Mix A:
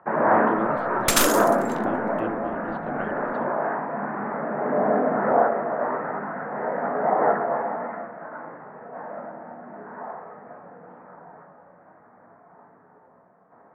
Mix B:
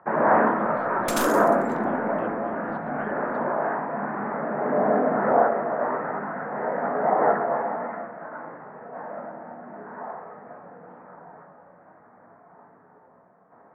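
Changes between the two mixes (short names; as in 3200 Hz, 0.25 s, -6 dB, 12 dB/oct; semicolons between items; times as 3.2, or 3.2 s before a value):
speech -6.5 dB; second sound -10.5 dB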